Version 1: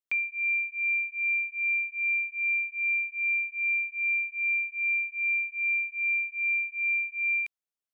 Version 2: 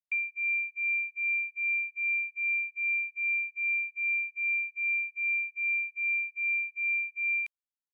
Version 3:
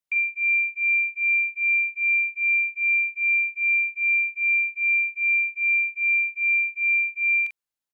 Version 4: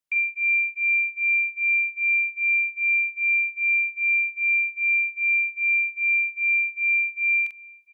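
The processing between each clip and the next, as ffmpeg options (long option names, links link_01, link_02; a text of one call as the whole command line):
ffmpeg -i in.wav -af "agate=range=-25dB:threshold=-35dB:ratio=16:detection=peak,volume=-2dB" out.wav
ffmpeg -i in.wav -filter_complex "[0:a]asplit=2[link_01][link_02];[link_02]adelay=43,volume=-5.5dB[link_03];[link_01][link_03]amix=inputs=2:normalize=0,volume=4.5dB" out.wav
ffmpeg -i in.wav -af "aecho=1:1:705:0.0668" out.wav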